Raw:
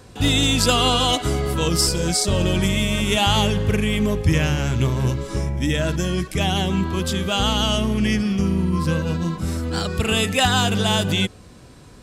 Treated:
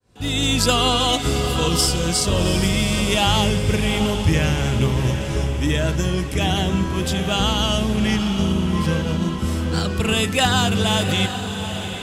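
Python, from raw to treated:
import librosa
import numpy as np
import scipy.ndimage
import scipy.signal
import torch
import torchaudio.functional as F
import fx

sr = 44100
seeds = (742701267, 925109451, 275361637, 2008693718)

y = fx.fade_in_head(x, sr, length_s=0.53)
y = fx.echo_diffused(y, sr, ms=760, feedback_pct=53, wet_db=-8.5)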